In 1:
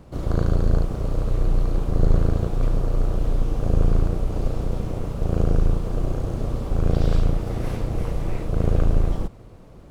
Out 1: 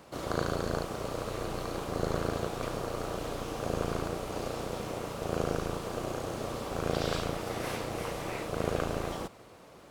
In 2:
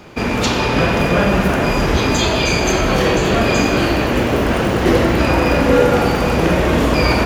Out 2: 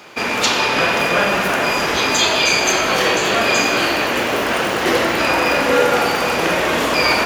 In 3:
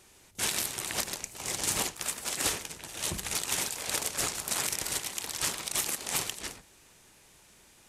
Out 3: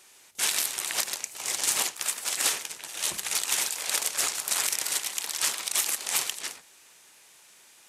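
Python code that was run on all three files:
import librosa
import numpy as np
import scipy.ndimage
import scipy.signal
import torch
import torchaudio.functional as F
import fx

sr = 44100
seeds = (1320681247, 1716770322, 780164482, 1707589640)

y = fx.highpass(x, sr, hz=1000.0, slope=6)
y = F.gain(torch.from_numpy(y), 4.5).numpy()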